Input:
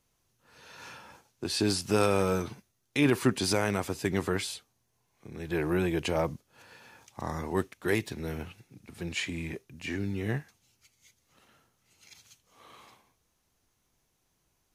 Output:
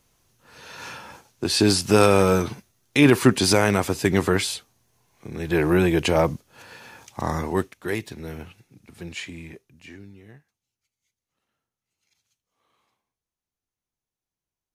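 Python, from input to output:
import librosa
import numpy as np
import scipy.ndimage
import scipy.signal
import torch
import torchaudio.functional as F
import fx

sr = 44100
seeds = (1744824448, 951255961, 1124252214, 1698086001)

y = fx.gain(x, sr, db=fx.line((7.35, 9.0), (7.9, 0.5), (8.98, 0.5), (9.78, -6.0), (10.32, -17.0)))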